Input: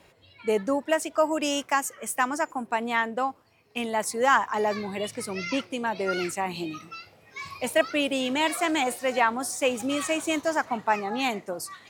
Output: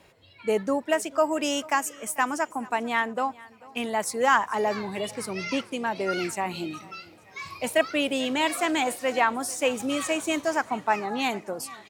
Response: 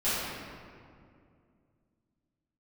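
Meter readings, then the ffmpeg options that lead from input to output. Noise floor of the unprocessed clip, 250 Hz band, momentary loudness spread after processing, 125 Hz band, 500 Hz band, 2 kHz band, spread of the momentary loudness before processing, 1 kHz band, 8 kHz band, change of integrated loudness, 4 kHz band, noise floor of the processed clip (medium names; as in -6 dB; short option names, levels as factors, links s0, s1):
-58 dBFS, 0.0 dB, 10 LU, 0.0 dB, 0.0 dB, 0.0 dB, 9 LU, 0.0 dB, 0.0 dB, 0.0 dB, 0.0 dB, -53 dBFS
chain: -af "aecho=1:1:442|884|1326:0.0794|0.0334|0.014"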